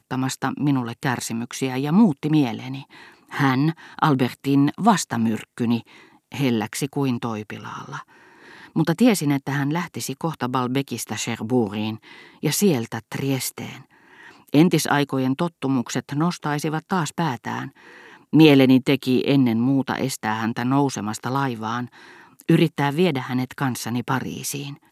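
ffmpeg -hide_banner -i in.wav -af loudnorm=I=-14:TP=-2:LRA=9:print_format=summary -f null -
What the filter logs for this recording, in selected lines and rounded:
Input Integrated:    -22.1 LUFS
Input True Peak:      -1.4 dBTP
Input LRA:             5.7 LU
Input Threshold:     -32.8 LUFS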